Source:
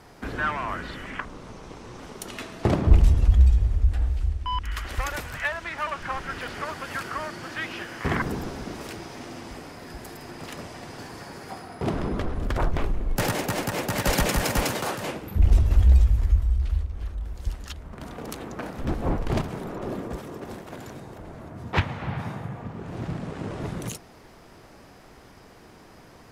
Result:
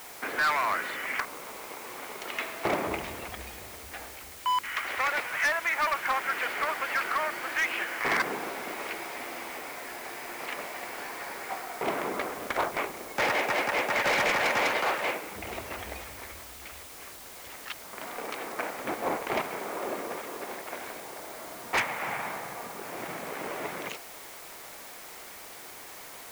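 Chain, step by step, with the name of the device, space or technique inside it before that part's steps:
drive-through speaker (band-pass filter 540–3,000 Hz; parametric band 2,200 Hz +7.5 dB 0.32 octaves; hard clipping −25.5 dBFS, distortion −12 dB; white noise bed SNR 14 dB)
level +4 dB

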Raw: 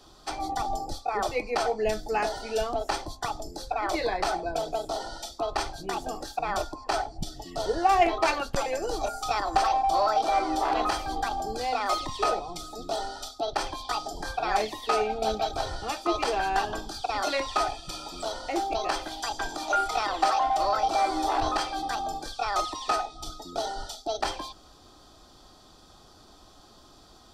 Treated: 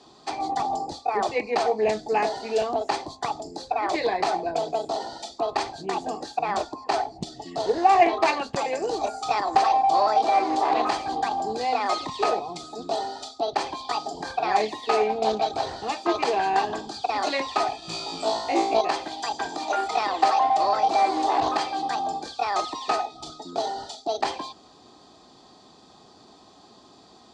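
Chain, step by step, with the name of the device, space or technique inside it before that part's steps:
low-shelf EQ 290 Hz +10.5 dB
full-range speaker at full volume (highs frequency-modulated by the lows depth 0.53 ms; loudspeaker in its box 280–7,300 Hz, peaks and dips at 320 Hz −5 dB, 560 Hz −6 dB, 1,400 Hz −10 dB, 3,200 Hz −5 dB, 5,600 Hz −7 dB)
0:17.80–0:18.81: flutter between parallel walls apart 3.1 metres, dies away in 0.48 s
level +4.5 dB

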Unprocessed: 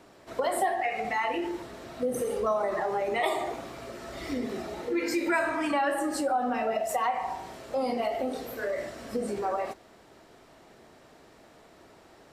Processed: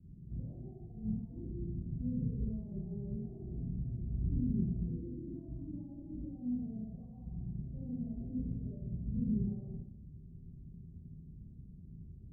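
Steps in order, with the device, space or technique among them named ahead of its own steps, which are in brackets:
club heard from the street (brickwall limiter −25 dBFS, peak gain reduction 10.5 dB; low-pass filter 150 Hz 24 dB per octave; convolution reverb RT60 0.65 s, pre-delay 29 ms, DRR −7.5 dB)
level +8 dB

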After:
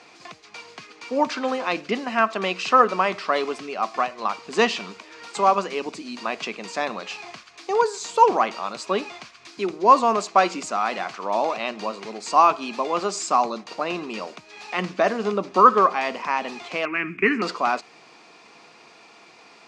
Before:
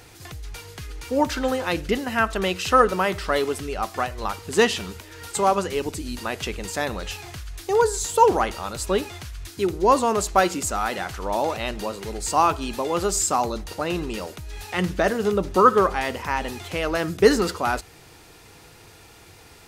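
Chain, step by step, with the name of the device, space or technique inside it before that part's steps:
television speaker (loudspeaker in its box 190–6,800 Hz, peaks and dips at 220 Hz +4 dB, 680 Hz +7 dB, 1,100 Hz +10 dB, 2,400 Hz +8 dB, 4,600 Hz +4 dB)
0:16.85–0:17.42: drawn EQ curve 380 Hz 0 dB, 550 Hz −22 dB, 2,400 Hz +12 dB, 3,900 Hz −26 dB, 9,400 Hz −18 dB, 14,000 Hz −6 dB
level −3.5 dB

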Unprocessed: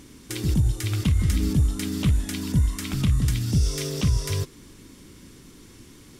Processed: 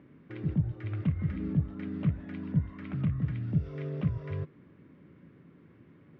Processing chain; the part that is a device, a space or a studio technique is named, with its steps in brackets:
bass cabinet (loudspeaker in its box 85–2,100 Hz, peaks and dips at 160 Hz +8 dB, 590 Hz +6 dB, 920 Hz −3 dB)
level −8.5 dB

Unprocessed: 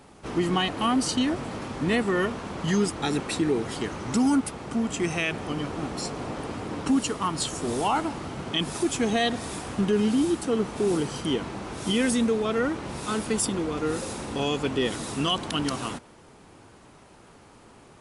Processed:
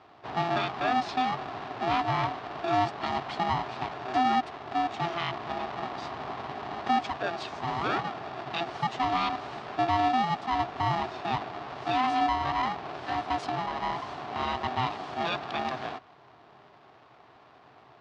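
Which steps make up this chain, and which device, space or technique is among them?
ring modulator pedal into a guitar cabinet (ring modulator with a square carrier 510 Hz; loudspeaker in its box 86–4,400 Hz, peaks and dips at 130 Hz +7 dB, 190 Hz −5 dB, 400 Hz +3 dB, 720 Hz +8 dB, 1,100 Hz +8 dB)
level −7 dB

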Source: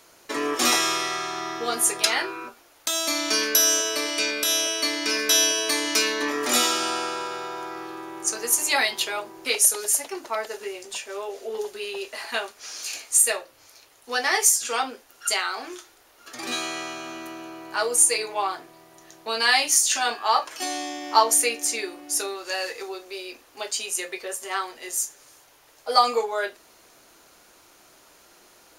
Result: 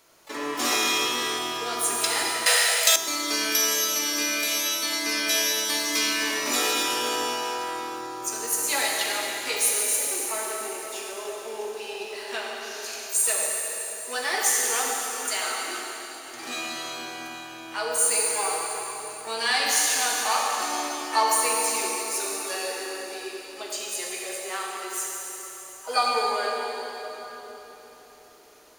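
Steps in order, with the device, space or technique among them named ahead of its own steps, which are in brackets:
shimmer-style reverb (pitch-shifted copies added +12 semitones −12 dB; convolution reverb RT60 4.1 s, pre-delay 38 ms, DRR −2 dB)
0:02.46–0:02.96: drawn EQ curve 120 Hz 0 dB, 330 Hz −23 dB, 510 Hz +15 dB, 940 Hz +3 dB, 1,900 Hz +13 dB
level −6 dB

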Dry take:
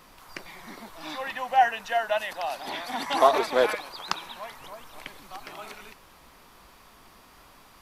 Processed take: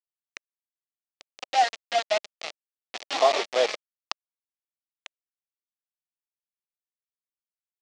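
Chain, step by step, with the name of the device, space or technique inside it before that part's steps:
hand-held game console (bit reduction 4 bits; loudspeaker in its box 470–5,700 Hz, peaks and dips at 610 Hz +3 dB, 990 Hz −8 dB, 1,500 Hz −9 dB)

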